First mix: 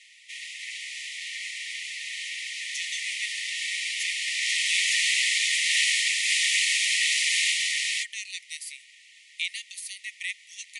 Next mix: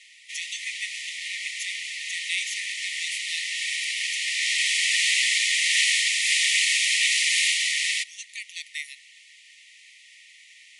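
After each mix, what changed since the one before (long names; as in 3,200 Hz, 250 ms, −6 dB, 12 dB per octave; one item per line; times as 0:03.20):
speech: entry −2.40 s
reverb: on, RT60 0.45 s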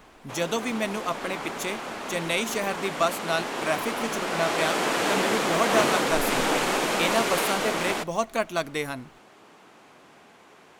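background −9.0 dB
master: remove linear-phase brick-wall band-pass 1,800–11,000 Hz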